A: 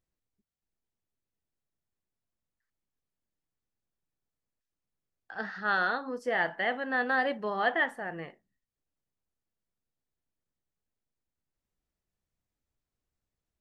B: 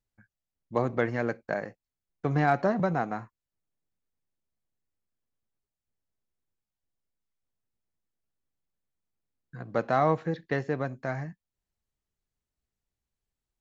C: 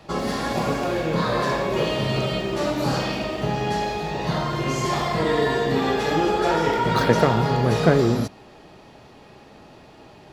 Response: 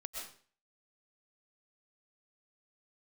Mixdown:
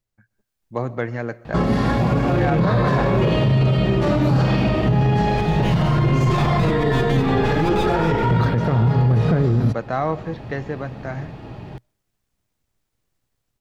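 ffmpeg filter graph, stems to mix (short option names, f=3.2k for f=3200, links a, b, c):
-filter_complex "[0:a]acompressor=threshold=-32dB:ratio=2.5,aeval=exprs='abs(val(0))':c=same,volume=-0.5dB[a];[1:a]volume=0.5dB,asplit=2[b][c];[c]volume=-15.5dB[d];[2:a]dynaudnorm=f=310:g=17:m=11.5dB,bass=f=250:g=10,treble=f=4k:g=-11,adelay=1450,volume=-7dB,asplit=2[e][f];[f]volume=-20.5dB[g];[a][e]amix=inputs=2:normalize=0,dynaudnorm=f=230:g=3:m=13dB,alimiter=limit=-8.5dB:level=0:latency=1:release=170,volume=0dB[h];[3:a]atrim=start_sample=2205[i];[d][g]amix=inputs=2:normalize=0[j];[j][i]afir=irnorm=-1:irlink=0[k];[b][h][k]amix=inputs=3:normalize=0,equalizer=f=120:t=o:w=0.37:g=5,alimiter=limit=-10dB:level=0:latency=1:release=12"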